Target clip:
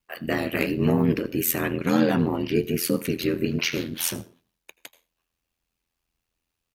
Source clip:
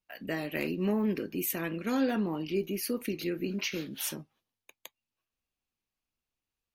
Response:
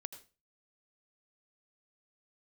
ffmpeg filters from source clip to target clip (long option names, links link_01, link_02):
-filter_complex "[0:a]asplit=2[link_01][link_02];[1:a]atrim=start_sample=2205[link_03];[link_02][link_03]afir=irnorm=-1:irlink=0,volume=-2dB[link_04];[link_01][link_04]amix=inputs=2:normalize=0,asplit=3[link_05][link_06][link_07];[link_06]asetrate=29433,aresample=44100,atempo=1.49831,volume=-12dB[link_08];[link_07]asetrate=35002,aresample=44100,atempo=1.25992,volume=-15dB[link_09];[link_05][link_08][link_09]amix=inputs=3:normalize=0,aeval=exprs='val(0)*sin(2*PI*42*n/s)':channel_layout=same,volume=7dB"